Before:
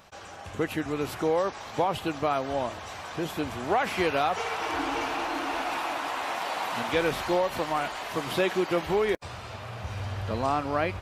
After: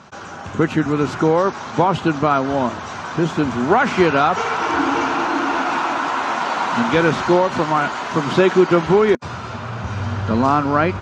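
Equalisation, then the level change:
loudspeaker in its box 120–7,100 Hz, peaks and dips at 160 Hz +5 dB, 240 Hz +9 dB, 370 Hz +5 dB, 980 Hz +6 dB, 1,400 Hz +9 dB, 6,500 Hz +5 dB
low-shelf EQ 190 Hz +11 dB
+5.5 dB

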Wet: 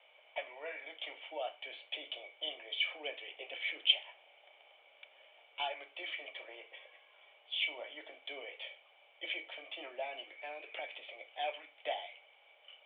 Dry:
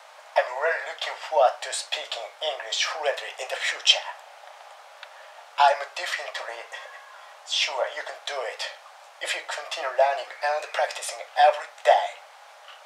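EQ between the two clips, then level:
dynamic equaliser 520 Hz, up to −6 dB, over −36 dBFS, Q 2.4
formant resonators in series i
high-frequency loss of the air 110 metres
+8.0 dB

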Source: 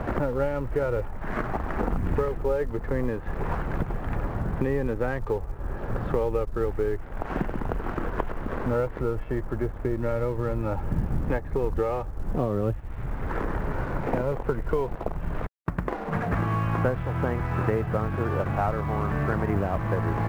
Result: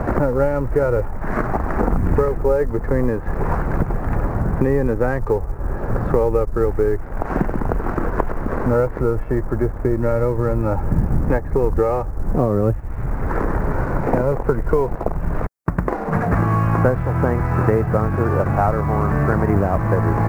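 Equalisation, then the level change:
parametric band 3,200 Hz −13.5 dB 0.82 octaves
+8.5 dB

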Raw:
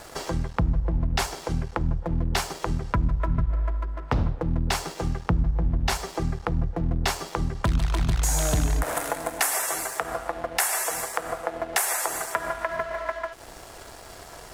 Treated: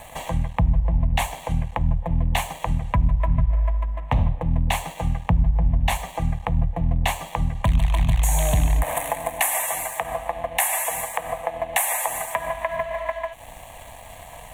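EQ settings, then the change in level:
phaser with its sweep stopped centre 1,400 Hz, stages 6
+5.0 dB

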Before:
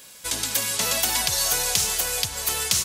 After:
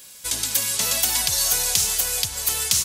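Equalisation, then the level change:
low-shelf EQ 140 Hz +6 dB
high-shelf EQ 3,100 Hz +7.5 dB
−4.0 dB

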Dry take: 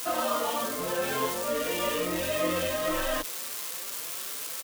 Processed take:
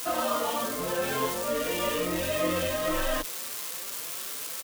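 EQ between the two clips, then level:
low-shelf EQ 150 Hz +5 dB
0.0 dB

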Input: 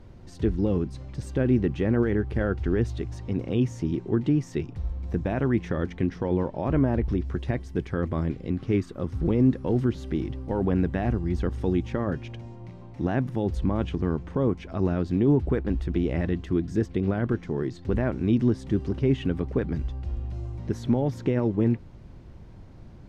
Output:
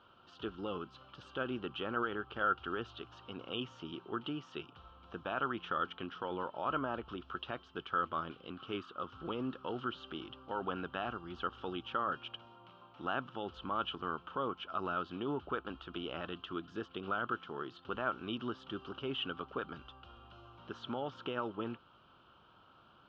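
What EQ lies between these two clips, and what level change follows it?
pair of resonant band-passes 2,000 Hz, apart 1.2 octaves
high-frequency loss of the air 160 metres
+11.0 dB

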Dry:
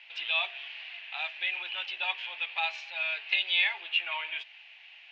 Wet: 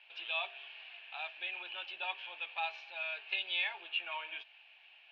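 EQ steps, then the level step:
high-frequency loss of the air 150 metres
low-shelf EQ 490 Hz +9.5 dB
notch filter 2,000 Hz, Q 6
−5.5 dB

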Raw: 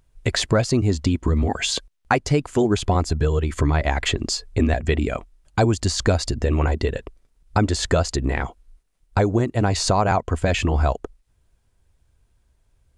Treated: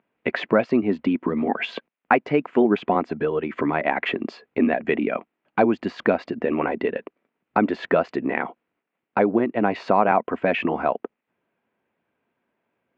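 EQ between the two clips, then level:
elliptic band-pass filter 210–2,500 Hz, stop band 80 dB
+2.0 dB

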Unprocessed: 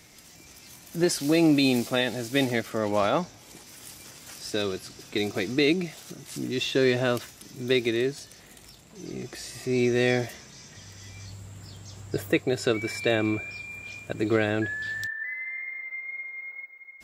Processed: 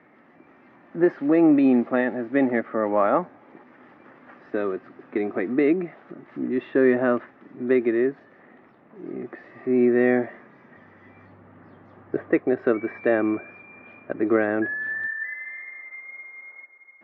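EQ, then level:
loudspeaker in its box 240–2,000 Hz, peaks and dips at 250 Hz +8 dB, 360 Hz +4 dB, 570 Hz +5 dB, 820 Hz +5 dB, 1,200 Hz +8 dB, 1,800 Hz +7 dB
low-shelf EQ 480 Hz +5.5 dB
−3.0 dB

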